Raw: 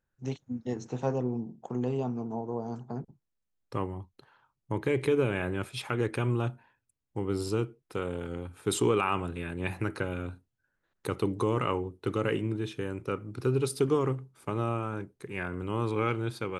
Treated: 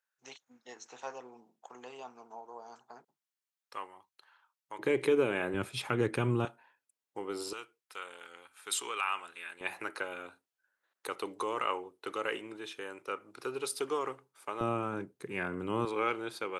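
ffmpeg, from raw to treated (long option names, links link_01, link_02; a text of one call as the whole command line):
ffmpeg -i in.wav -af "asetnsamples=nb_out_samples=441:pad=0,asendcmd='4.79 highpass f 270;5.54 highpass f 120;6.45 highpass f 500;7.53 highpass f 1300;9.61 highpass f 640;14.61 highpass f 170;15.85 highpass f 430',highpass=1100" out.wav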